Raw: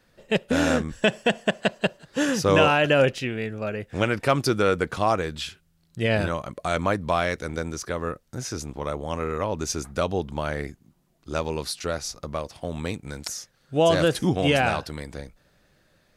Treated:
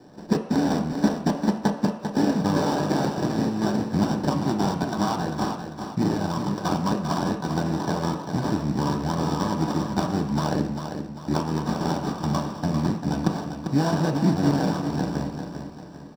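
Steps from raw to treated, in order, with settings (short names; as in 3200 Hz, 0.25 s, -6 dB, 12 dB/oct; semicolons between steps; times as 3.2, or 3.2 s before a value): graphic EQ 125/500/2000/8000 Hz -4/-11/+10/-11 dB; compressor 6:1, threshold -35 dBFS, peak gain reduction 19.5 dB; sample-rate reducer 2200 Hz, jitter 20%; feedback echo 0.396 s, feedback 42%, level -7.5 dB; reverb RT60 0.70 s, pre-delay 3 ms, DRR 2.5 dB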